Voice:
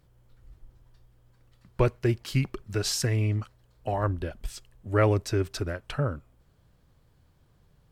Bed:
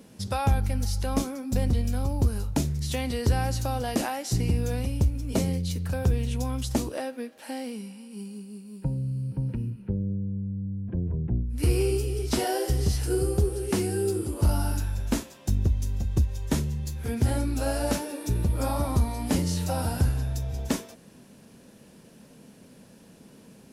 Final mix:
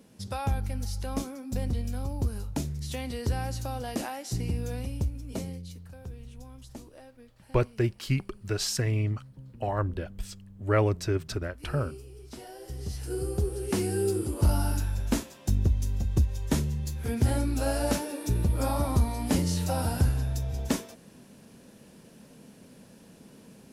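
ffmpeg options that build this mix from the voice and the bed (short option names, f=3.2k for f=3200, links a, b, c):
-filter_complex "[0:a]adelay=5750,volume=-1.5dB[a];[1:a]volume=12dB,afade=t=out:st=4.94:d=0.98:silence=0.237137,afade=t=in:st=12.58:d=1.44:silence=0.133352[b];[a][b]amix=inputs=2:normalize=0"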